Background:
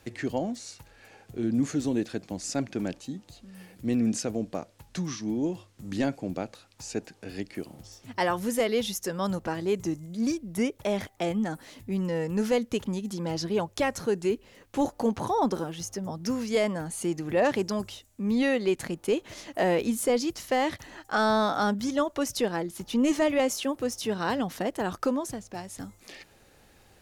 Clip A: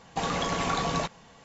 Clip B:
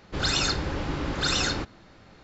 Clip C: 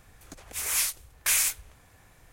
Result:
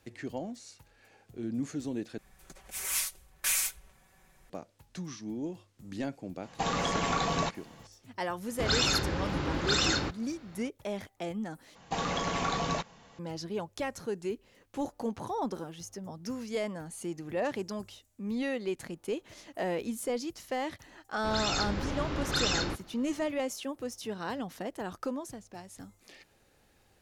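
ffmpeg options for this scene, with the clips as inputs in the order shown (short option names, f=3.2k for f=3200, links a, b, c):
-filter_complex "[1:a]asplit=2[a][b];[2:a]asplit=2[c][d];[0:a]volume=-8dB[e];[3:a]aecho=1:1:5.3:0.77[f];[c]highpass=47[g];[b]aresample=16000,aresample=44100[h];[d]dynaudnorm=f=310:g=3:m=4.5dB[i];[e]asplit=3[j][k][l];[j]atrim=end=2.184[m];[f]atrim=end=2.32,asetpts=PTS-STARTPTS,volume=-7dB[n];[k]atrim=start=4.496:end=11.754[o];[h]atrim=end=1.44,asetpts=PTS-STARTPTS,volume=-3dB[p];[l]atrim=start=13.186[q];[a]atrim=end=1.44,asetpts=PTS-STARTPTS,volume=-1.5dB,afade=t=in:d=0.004:c=hsin,afade=t=out:st=1.436:d=0.004:c=hsin,adelay=6430[r];[g]atrim=end=2.23,asetpts=PTS-STARTPTS,volume=-2dB,afade=t=in:d=0.004:c=hsin,afade=t=out:st=2.226:d=0.004:c=hsin,adelay=8460[s];[i]atrim=end=2.23,asetpts=PTS-STARTPTS,volume=-8.5dB,afade=t=in:d=0.004:c=hsin,afade=t=out:st=2.226:d=0.004:c=hsin,adelay=21110[t];[m][n]acrossfade=d=0.004:c1=hsin:c2=hsin[u];[u][o]acrossfade=d=0.004:c1=hsin:c2=hsin[v];[v][p]acrossfade=d=0.004:c1=hsin:c2=hsin[w];[w][q]acrossfade=d=0.004:c1=hsin:c2=hsin[x];[x][r][s][t]amix=inputs=4:normalize=0"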